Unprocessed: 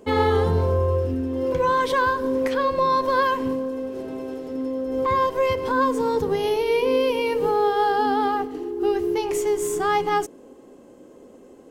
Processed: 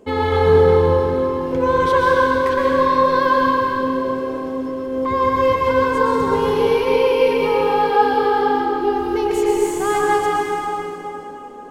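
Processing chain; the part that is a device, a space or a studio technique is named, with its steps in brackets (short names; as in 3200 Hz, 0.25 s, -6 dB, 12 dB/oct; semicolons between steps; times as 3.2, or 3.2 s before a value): swimming-pool hall (reverb RT60 3.6 s, pre-delay 0.11 s, DRR -4 dB; high shelf 5000 Hz -4.5 dB)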